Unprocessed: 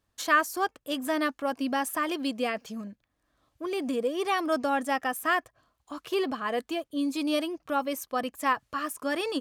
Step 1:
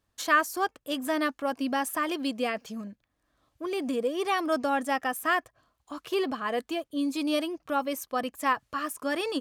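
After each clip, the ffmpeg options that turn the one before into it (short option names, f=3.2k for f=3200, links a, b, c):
-af anull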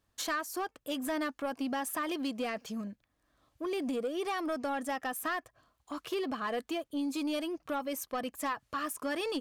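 -af "acompressor=threshold=-29dB:ratio=4,asoftclip=type=tanh:threshold=-26.5dB"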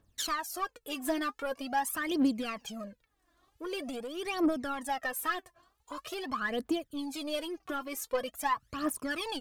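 -af "aphaser=in_gain=1:out_gain=1:delay=3:decay=0.76:speed=0.45:type=triangular,volume=-1.5dB"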